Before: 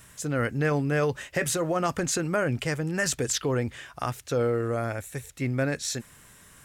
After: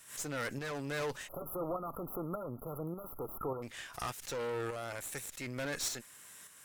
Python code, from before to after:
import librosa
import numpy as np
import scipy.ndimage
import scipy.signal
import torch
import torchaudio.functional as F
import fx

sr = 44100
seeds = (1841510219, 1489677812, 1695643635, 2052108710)

y = fx.highpass(x, sr, hz=520.0, slope=6)
y = fx.high_shelf(y, sr, hz=3300.0, db=5.5)
y = fx.tube_stage(y, sr, drive_db=33.0, bias=0.7)
y = fx.tremolo_shape(y, sr, shape='saw_up', hz=1.7, depth_pct=50)
y = fx.brickwall_bandstop(y, sr, low_hz=1400.0, high_hz=11000.0, at=(1.27, 3.62), fade=0.02)
y = fx.pre_swell(y, sr, db_per_s=130.0)
y = y * librosa.db_to_amplitude(1.5)